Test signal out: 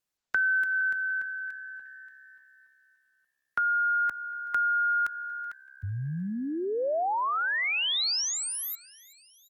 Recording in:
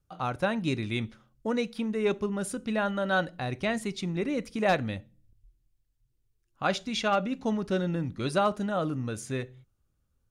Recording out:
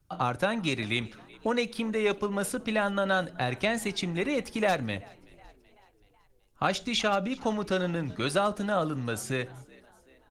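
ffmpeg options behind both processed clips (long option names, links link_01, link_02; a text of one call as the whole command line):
ffmpeg -i in.wav -filter_complex "[0:a]acrossover=split=89|530|5200[link_01][link_02][link_03][link_04];[link_01]acompressor=threshold=-58dB:ratio=4[link_05];[link_02]acompressor=threshold=-40dB:ratio=4[link_06];[link_03]acompressor=threshold=-33dB:ratio=4[link_07];[link_04]acompressor=threshold=-42dB:ratio=4[link_08];[link_05][link_06][link_07][link_08]amix=inputs=4:normalize=0,asplit=2[link_09][link_10];[link_10]asplit=4[link_11][link_12][link_13][link_14];[link_11]adelay=378,afreqshift=67,volume=-23.5dB[link_15];[link_12]adelay=756,afreqshift=134,volume=-28.5dB[link_16];[link_13]adelay=1134,afreqshift=201,volume=-33.6dB[link_17];[link_14]adelay=1512,afreqshift=268,volume=-38.6dB[link_18];[link_15][link_16][link_17][link_18]amix=inputs=4:normalize=0[link_19];[link_09][link_19]amix=inputs=2:normalize=0,volume=7.5dB" -ar 48000 -c:a libopus -b:a 20k out.opus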